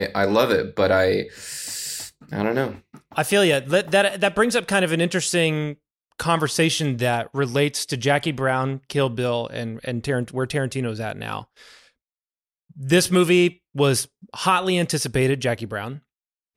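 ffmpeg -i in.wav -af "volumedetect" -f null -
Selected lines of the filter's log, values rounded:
mean_volume: -22.4 dB
max_volume: -5.4 dB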